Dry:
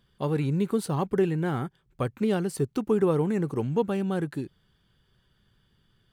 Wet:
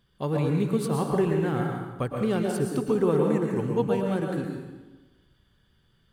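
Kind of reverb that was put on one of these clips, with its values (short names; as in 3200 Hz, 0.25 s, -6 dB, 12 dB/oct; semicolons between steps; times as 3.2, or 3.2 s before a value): plate-style reverb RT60 1.2 s, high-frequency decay 0.75×, pre-delay 0.1 s, DRR 1 dB; gain -1 dB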